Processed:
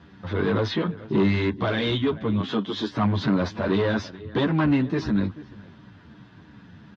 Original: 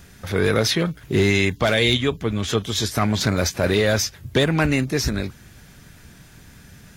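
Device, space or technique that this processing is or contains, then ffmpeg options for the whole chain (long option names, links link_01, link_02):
barber-pole flanger into a guitar amplifier: -filter_complex "[0:a]asettb=1/sr,asplit=3[link_01][link_02][link_03];[link_01]atrim=end=2.404[link_04];[link_02]atrim=start=2.4:end=2.91,asetpts=PTS-STARTPTS,afade=type=in:duration=0.004:curve=qsin,afade=type=out:start_time=0.506:duration=0.004:curve=qsin,highpass=frequency=170:width=0.5412,highpass=frequency=170:width=1.3066[link_05];[link_03]atrim=start=2.906[link_06];[link_04][link_05]acrossfade=duration=0.004:curve1=hsin:curve2=qsin[link_07];[link_07][link_06]acrossfade=duration=0.004:curve1=qsin:curve2=hsin,asplit=2[link_08][link_09];[link_09]adelay=437.3,volume=-21dB,highshelf=frequency=4000:gain=-9.84[link_10];[link_08][link_10]amix=inputs=2:normalize=0,asplit=2[link_11][link_12];[link_12]adelay=9.7,afreqshift=-2.8[link_13];[link_11][link_13]amix=inputs=2:normalize=1,asoftclip=type=tanh:threshold=-19dB,highpass=97,equalizer=frequency=100:width_type=q:width=4:gain=5,equalizer=frequency=200:width_type=q:width=4:gain=7,equalizer=frequency=300:width_type=q:width=4:gain=8,equalizer=frequency=1000:width_type=q:width=4:gain=8,equalizer=frequency=2300:width_type=q:width=4:gain=-7,lowpass=frequency=3700:width=0.5412,lowpass=frequency=3700:width=1.3066"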